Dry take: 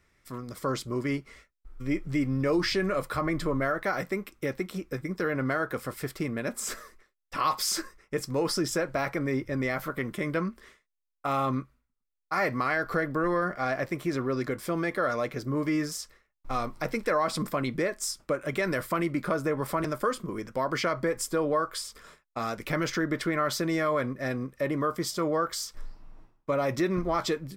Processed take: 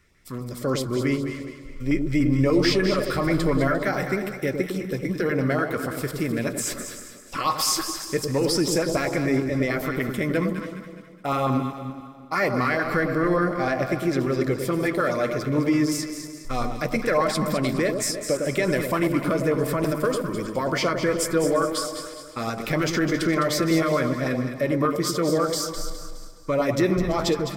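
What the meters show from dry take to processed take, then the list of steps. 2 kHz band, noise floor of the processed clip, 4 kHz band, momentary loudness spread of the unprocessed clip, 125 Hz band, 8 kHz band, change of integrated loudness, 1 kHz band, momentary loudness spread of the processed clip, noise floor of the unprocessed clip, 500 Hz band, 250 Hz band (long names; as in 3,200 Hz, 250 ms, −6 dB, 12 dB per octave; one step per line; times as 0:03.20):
+4.0 dB, −42 dBFS, +6.0 dB, 8 LU, +7.0 dB, +6.5 dB, +5.5 dB, +3.0 dB, 10 LU, −78 dBFS, +6.0 dB, +7.0 dB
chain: feedback delay that plays each chunk backwards 175 ms, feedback 52%, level −13 dB
auto-filter notch saw up 6.8 Hz 570–2,000 Hz
on a send: delay that swaps between a low-pass and a high-pass 104 ms, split 870 Hz, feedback 64%, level −5 dB
on the sum: level +5.5 dB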